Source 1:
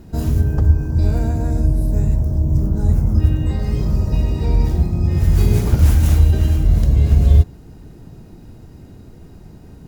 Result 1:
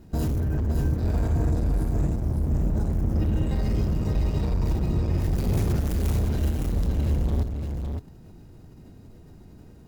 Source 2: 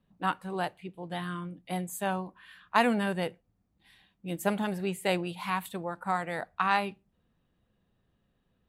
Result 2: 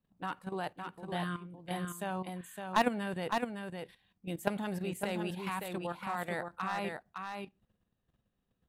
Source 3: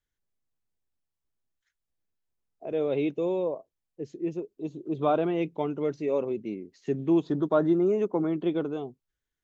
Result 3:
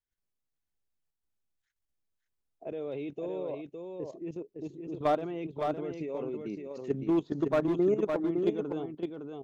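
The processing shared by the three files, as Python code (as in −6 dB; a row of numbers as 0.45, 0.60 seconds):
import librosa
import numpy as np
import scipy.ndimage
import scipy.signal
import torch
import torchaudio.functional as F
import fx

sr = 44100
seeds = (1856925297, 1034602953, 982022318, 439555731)

y = np.clip(x, -10.0 ** (-18.0 / 20.0), 10.0 ** (-18.0 / 20.0))
y = fx.level_steps(y, sr, step_db=12)
y = y + 10.0 ** (-5.0 / 20.0) * np.pad(y, (int(561 * sr / 1000.0), 0))[:len(y)]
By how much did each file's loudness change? −9.0, −5.5, −4.5 LU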